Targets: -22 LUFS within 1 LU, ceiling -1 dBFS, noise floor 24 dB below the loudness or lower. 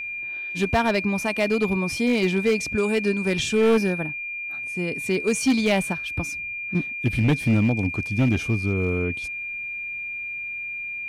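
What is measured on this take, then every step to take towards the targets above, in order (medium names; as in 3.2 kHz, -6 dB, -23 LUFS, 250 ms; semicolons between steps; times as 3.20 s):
clipped samples 1.5%; clipping level -14.0 dBFS; steady tone 2.4 kHz; tone level -29 dBFS; loudness -23.5 LUFS; peak level -14.0 dBFS; loudness target -22.0 LUFS
-> clip repair -14 dBFS; band-stop 2.4 kHz, Q 30; trim +1.5 dB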